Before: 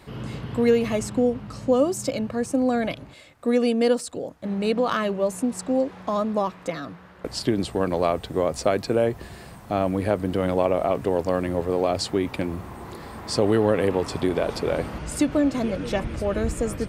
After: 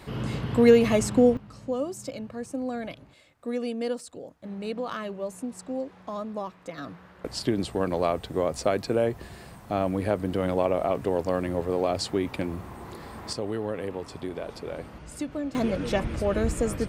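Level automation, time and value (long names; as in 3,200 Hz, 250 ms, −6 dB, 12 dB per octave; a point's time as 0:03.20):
+2.5 dB
from 0:01.37 −9.5 dB
from 0:06.78 −3 dB
from 0:13.33 −11 dB
from 0:15.55 −0.5 dB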